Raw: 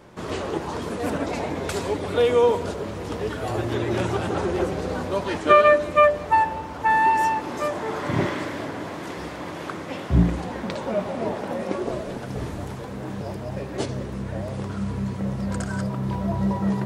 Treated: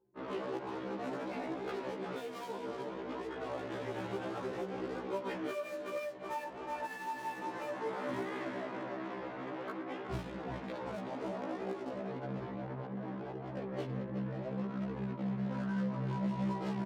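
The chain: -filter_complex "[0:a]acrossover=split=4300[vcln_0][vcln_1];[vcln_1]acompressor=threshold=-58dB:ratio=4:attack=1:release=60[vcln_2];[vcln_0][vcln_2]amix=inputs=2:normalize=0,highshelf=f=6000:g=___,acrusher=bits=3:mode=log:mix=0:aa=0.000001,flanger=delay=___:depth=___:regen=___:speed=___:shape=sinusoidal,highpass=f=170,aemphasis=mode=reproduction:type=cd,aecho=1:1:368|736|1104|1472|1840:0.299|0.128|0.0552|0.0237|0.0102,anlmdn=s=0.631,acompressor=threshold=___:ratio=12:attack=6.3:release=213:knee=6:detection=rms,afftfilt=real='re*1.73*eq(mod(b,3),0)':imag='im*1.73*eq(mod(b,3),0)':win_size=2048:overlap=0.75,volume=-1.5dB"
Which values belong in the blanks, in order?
2.5, 2.4, 7.4, 32, 0.6, -29dB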